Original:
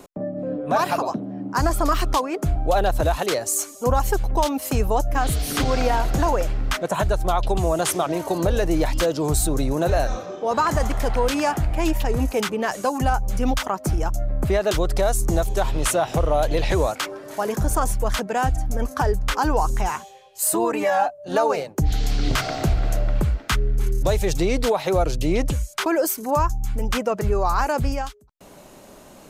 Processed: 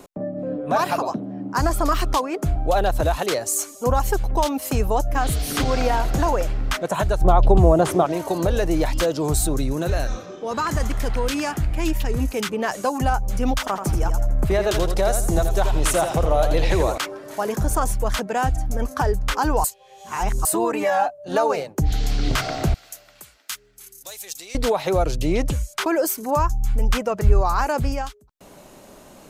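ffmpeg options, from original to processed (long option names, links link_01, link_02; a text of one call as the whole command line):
ffmpeg -i in.wav -filter_complex "[0:a]asettb=1/sr,asplit=3[link_01][link_02][link_03];[link_01]atrim=end=7.214[link_04];[link_02]atrim=start=7.21:end=8.06,asetpts=PTS-STARTPTS,afade=type=in:duration=0.004:curve=qsin,afade=type=out:start_time=0.846:duration=0.004:curve=qsin,tiltshelf=frequency=1400:gain=8.5[link_05];[link_03]atrim=start=8.056[link_06];[link_04][link_05]acrossfade=duration=0.004:curve1=hsin:curve2=qsin[link_07];[link_07][link_06]acrossfade=duration=0.004:curve1=qsin:curve2=hsin,asettb=1/sr,asplit=3[link_08][link_09][link_10];[link_08]atrim=end=9.564[link_11];[link_09]atrim=start=9.56:end=12.53,asetpts=PTS-STARTPTS,afade=type=in:duration=0.004:curve=qsin,afade=type=out:start_time=2.966:duration=0.004:curve=qsin,equalizer=frequency=730:width_type=o:width=1.2:gain=-7.5[link_12];[link_10]atrim=start=12.526[link_13];[link_11][link_12]acrossfade=duration=0.004:curve1=hsin:curve2=qsin[link_14];[link_14][link_13]acrossfade=duration=0.004:curve1=qsin:curve2=hsin,asettb=1/sr,asplit=3[link_15][link_16][link_17];[link_15]atrim=end=13.594[link_18];[link_16]atrim=start=13.59:end=16.98,asetpts=PTS-STARTPTS,afade=type=in:duration=0.004:curve=qsin,afade=type=out:start_time=3.386:duration=0.004:curve=qsin,aecho=1:1:83|166|249|332:0.422|0.127|0.038|0.0114,atrim=end_sample=149499[link_19];[link_17]atrim=start=16.976[link_20];[link_18][link_19]acrossfade=duration=0.004:curve1=hsin:curve2=qsin[link_21];[link_21][link_20]acrossfade=duration=0.004:curve1=qsin:curve2=hsin,asettb=1/sr,asplit=3[link_22][link_23][link_24];[link_22]atrim=end=22.744[link_25];[link_23]atrim=start=22.74:end=24.55,asetpts=PTS-STARTPTS,afade=type=in:duration=0.004:curve=qsin,afade=type=out:start_time=1.806:duration=0.004:curve=qsin,aderivative[link_26];[link_24]atrim=start=24.546[link_27];[link_25][link_26]acrossfade=duration=0.004:curve1=hsin:curve2=qsin[link_28];[link_28][link_27]acrossfade=duration=0.004:curve1=qsin:curve2=hsin,asettb=1/sr,asplit=3[link_29][link_30][link_31];[link_29]atrim=end=26.394[link_32];[link_30]atrim=start=26.39:end=27.41,asetpts=PTS-STARTPTS,afade=type=in:duration=0.004:curve=qsin,afade=type=out:start_time=1.016:duration=0.004:curve=qsin,asubboost=boost=7:cutoff=130[link_33];[link_31]atrim=start=27.406[link_34];[link_32][link_33]acrossfade=duration=0.004:curve1=hsin:curve2=qsin[link_35];[link_35][link_34]acrossfade=duration=0.004:curve1=qsin:curve2=hsin,asplit=3[link_36][link_37][link_38];[link_36]atrim=end=19.642[link_39];[link_37]atrim=start=19.638:end=20.452,asetpts=PTS-STARTPTS,areverse[link_40];[link_38]atrim=start=20.448[link_41];[link_39][link_40]acrossfade=duration=0.004:curve1=hsin:curve2=hsin[link_42];[link_42][link_41]acrossfade=duration=0.004:curve1=hsin:curve2=hsin" out.wav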